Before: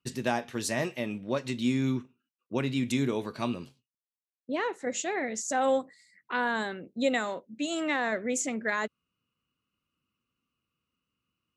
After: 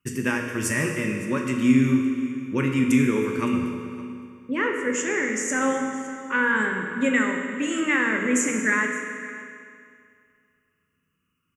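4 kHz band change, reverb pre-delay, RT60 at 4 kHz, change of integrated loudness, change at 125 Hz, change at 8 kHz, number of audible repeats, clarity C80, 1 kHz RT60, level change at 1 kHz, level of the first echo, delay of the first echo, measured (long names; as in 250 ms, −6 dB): +0.5 dB, 12 ms, 2.1 s, +7.0 dB, +7.0 dB, +6.5 dB, 1, 4.5 dB, 2.3 s, +2.5 dB, −18.5 dB, 564 ms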